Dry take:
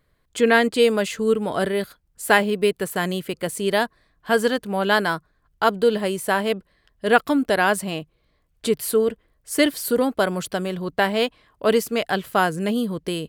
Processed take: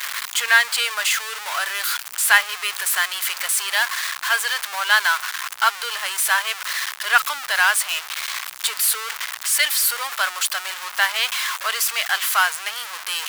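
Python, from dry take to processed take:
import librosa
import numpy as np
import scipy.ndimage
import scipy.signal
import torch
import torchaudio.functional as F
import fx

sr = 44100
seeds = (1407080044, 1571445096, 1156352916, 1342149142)

p1 = x + 0.5 * 10.0 ** (-20.5 / 20.0) * np.sign(x)
p2 = scipy.signal.sosfilt(scipy.signal.butter(4, 1100.0, 'highpass', fs=sr, output='sos'), p1)
p3 = fx.quant_dither(p2, sr, seeds[0], bits=8, dither='triangular')
p4 = p2 + (p3 * 10.0 ** (-10.5 / 20.0))
y = p4 * 10.0 ** (1.5 / 20.0)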